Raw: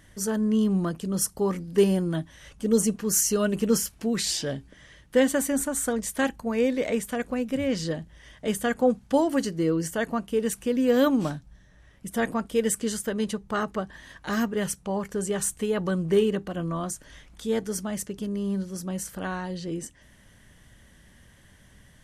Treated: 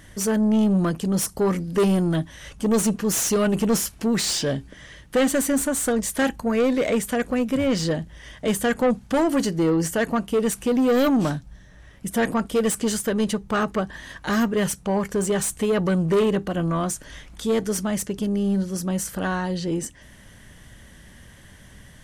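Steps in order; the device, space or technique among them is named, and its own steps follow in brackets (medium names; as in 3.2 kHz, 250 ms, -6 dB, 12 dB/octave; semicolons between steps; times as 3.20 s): saturation between pre-emphasis and de-emphasis (treble shelf 4.5 kHz +8.5 dB; saturation -22.5 dBFS, distortion -9 dB; treble shelf 4.5 kHz -8.5 dB); trim +7.5 dB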